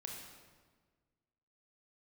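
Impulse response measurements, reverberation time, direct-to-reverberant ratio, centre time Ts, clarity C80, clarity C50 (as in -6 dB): 1.5 s, 0.0 dB, 62 ms, 4.0 dB, 2.0 dB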